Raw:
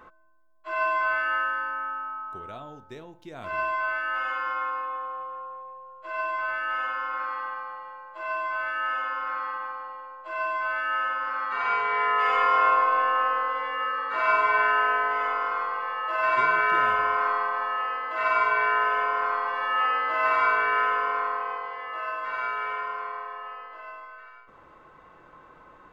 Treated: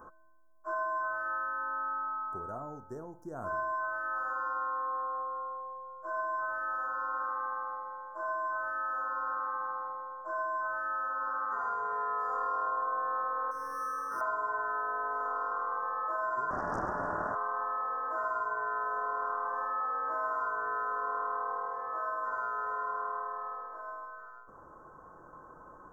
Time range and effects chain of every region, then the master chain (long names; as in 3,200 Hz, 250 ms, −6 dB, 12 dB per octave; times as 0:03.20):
0:13.51–0:14.21: parametric band 690 Hz −14.5 dB 0.99 octaves + linearly interpolated sample-rate reduction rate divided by 6×
0:16.50–0:17.35: Butterworth high-pass 220 Hz + highs frequency-modulated by the lows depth 0.89 ms
whole clip: parametric band 4,300 Hz −2 dB 1.7 octaves; downward compressor, threshold −30 dBFS; inverse Chebyshev band-stop filter 2,100–4,200 Hz, stop band 40 dB